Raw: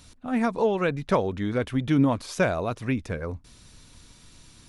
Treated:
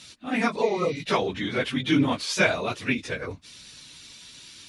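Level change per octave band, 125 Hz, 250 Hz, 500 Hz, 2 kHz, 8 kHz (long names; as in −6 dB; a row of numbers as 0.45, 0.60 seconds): −4.5, −1.5, −1.0, +6.0, +7.0 decibels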